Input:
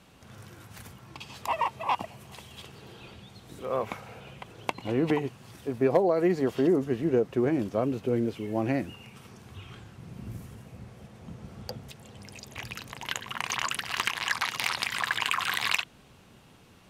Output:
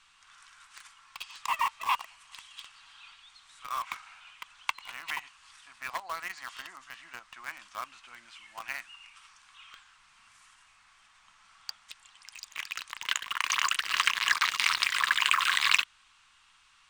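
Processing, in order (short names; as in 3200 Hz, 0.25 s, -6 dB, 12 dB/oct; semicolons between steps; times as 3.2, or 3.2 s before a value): elliptic band-pass 1100–8800 Hz, stop band 40 dB; added noise brown -78 dBFS; in parallel at -5 dB: requantised 6-bit, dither none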